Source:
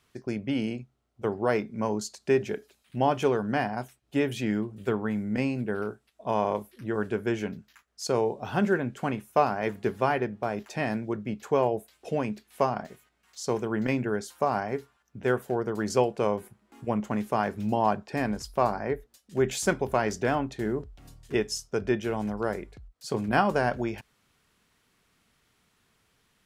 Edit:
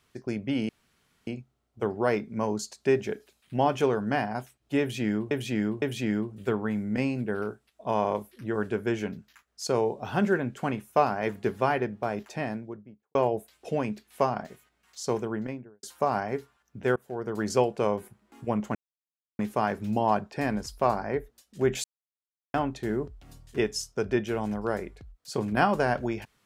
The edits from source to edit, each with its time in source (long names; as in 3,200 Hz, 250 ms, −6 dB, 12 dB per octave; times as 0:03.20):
0:00.69: splice in room tone 0.58 s
0:04.22–0:04.73: repeat, 3 plays
0:10.52–0:11.55: fade out and dull
0:13.49–0:14.23: fade out and dull
0:15.36–0:15.79: fade in, from −24 dB
0:17.15: splice in silence 0.64 s
0:19.60–0:20.30: silence